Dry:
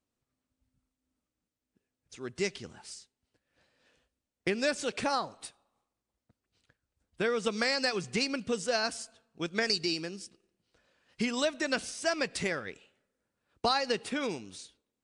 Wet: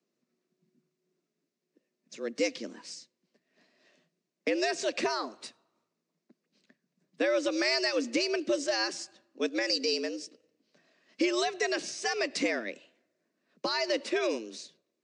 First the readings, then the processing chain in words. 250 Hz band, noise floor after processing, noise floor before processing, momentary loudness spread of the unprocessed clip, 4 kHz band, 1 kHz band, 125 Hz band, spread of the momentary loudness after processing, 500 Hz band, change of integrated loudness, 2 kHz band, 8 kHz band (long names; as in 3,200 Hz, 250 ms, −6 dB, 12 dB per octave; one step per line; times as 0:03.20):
+2.0 dB, −85 dBFS, below −85 dBFS, 17 LU, +1.0 dB, −1.5 dB, below −15 dB, 16 LU, +2.5 dB, +1.0 dB, +0.5 dB, +1.0 dB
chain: brickwall limiter −22 dBFS, peak gain reduction 7 dB
frequency shifter +110 Hz
loudspeaker in its box 160–6,700 Hz, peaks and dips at 250 Hz +5 dB, 830 Hz −10 dB, 1,400 Hz −6 dB, 3,200 Hz −6 dB
level +5 dB